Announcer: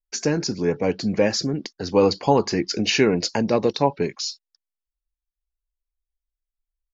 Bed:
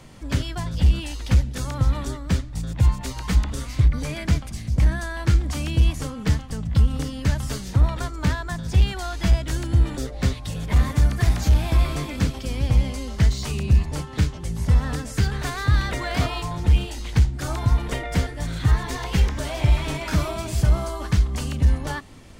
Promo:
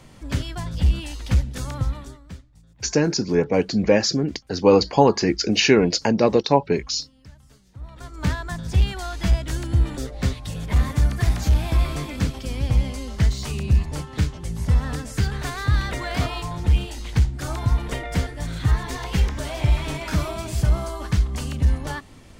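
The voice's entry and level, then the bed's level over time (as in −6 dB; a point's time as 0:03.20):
2.70 s, +2.5 dB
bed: 0:01.75 −1.5 dB
0:02.62 −24.5 dB
0:07.72 −24.5 dB
0:08.25 −1 dB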